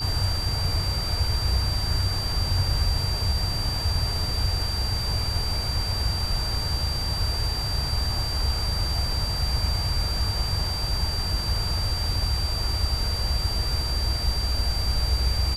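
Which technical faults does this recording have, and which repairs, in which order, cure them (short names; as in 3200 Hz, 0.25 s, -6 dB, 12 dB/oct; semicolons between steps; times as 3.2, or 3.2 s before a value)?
tone 4700 Hz -29 dBFS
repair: notch 4700 Hz, Q 30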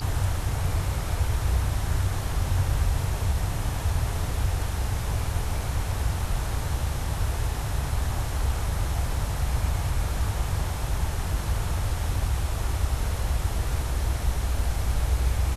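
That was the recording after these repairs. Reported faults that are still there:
none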